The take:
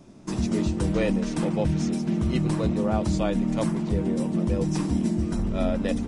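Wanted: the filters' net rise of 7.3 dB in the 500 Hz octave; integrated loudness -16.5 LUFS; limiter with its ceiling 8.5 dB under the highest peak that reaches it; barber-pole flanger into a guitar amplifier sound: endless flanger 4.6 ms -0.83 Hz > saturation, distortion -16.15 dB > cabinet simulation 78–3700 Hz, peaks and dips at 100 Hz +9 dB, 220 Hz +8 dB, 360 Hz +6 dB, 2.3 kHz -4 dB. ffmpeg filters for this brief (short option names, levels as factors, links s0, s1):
-filter_complex "[0:a]equalizer=f=500:t=o:g=6.5,alimiter=limit=0.133:level=0:latency=1,asplit=2[s0][s1];[s1]adelay=4.6,afreqshift=-0.83[s2];[s0][s2]amix=inputs=2:normalize=1,asoftclip=threshold=0.0631,highpass=78,equalizer=f=100:t=q:w=4:g=9,equalizer=f=220:t=q:w=4:g=8,equalizer=f=360:t=q:w=4:g=6,equalizer=f=2300:t=q:w=4:g=-4,lowpass=f=3700:w=0.5412,lowpass=f=3700:w=1.3066,volume=3.16"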